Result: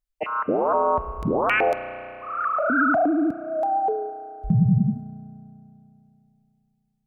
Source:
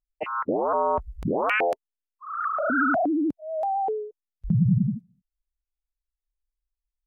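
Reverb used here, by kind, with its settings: spring tank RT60 3 s, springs 33 ms, chirp 20 ms, DRR 11.5 dB; trim +2.5 dB

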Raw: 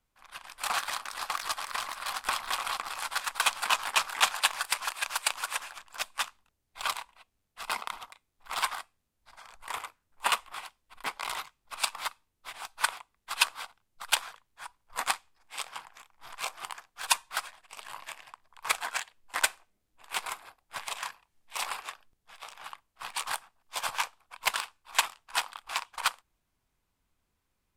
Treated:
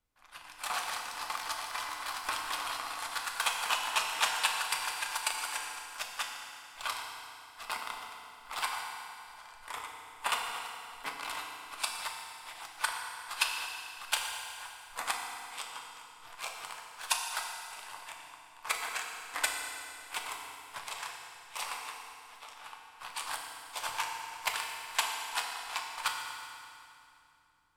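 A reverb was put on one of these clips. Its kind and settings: FDN reverb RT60 2.7 s, low-frequency decay 1.25×, high-frequency decay 0.85×, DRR 0.5 dB; trim -5.5 dB

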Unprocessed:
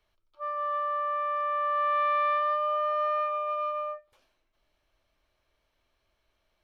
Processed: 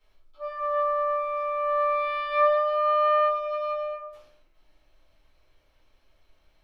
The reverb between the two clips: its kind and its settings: simulated room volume 71 m³, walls mixed, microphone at 2.1 m; trim -3 dB

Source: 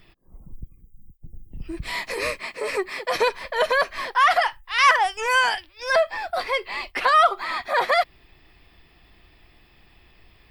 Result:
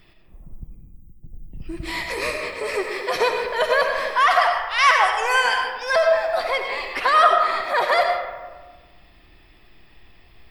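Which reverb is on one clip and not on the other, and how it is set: algorithmic reverb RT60 1.4 s, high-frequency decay 0.45×, pre-delay 45 ms, DRR 2.5 dB

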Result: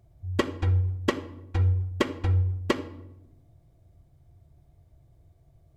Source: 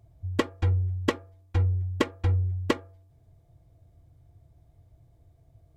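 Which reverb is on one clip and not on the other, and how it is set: simulated room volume 2900 m³, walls furnished, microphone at 1.1 m

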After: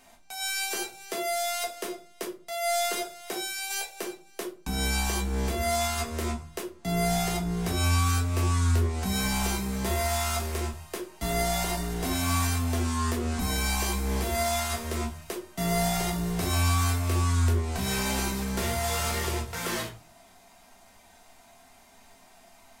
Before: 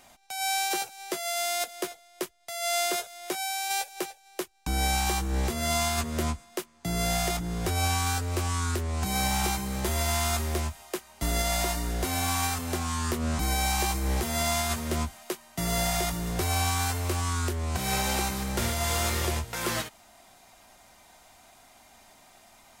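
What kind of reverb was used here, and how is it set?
simulated room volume 200 m³, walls furnished, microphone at 1.6 m; trim -3.5 dB

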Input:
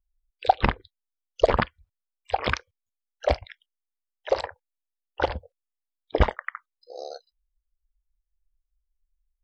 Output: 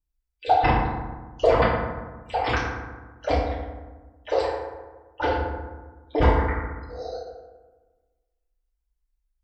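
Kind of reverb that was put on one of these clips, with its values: FDN reverb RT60 1.3 s, low-frequency decay 1.3×, high-frequency decay 0.45×, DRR -10 dB; trim -8 dB

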